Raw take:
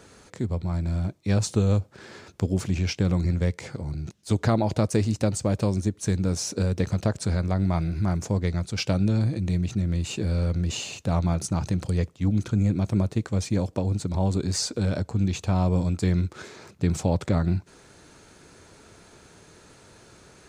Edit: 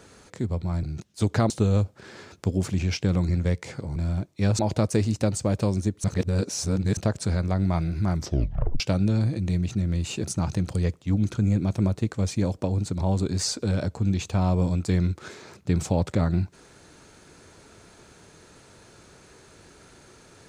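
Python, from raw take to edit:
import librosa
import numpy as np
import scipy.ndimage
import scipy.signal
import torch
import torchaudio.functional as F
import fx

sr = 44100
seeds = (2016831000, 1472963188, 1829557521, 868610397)

y = fx.edit(x, sr, fx.swap(start_s=0.83, length_s=0.63, other_s=3.92, other_length_s=0.67),
    fx.reverse_span(start_s=6.04, length_s=0.93),
    fx.tape_stop(start_s=8.15, length_s=0.65),
    fx.cut(start_s=10.24, length_s=1.14), tone=tone)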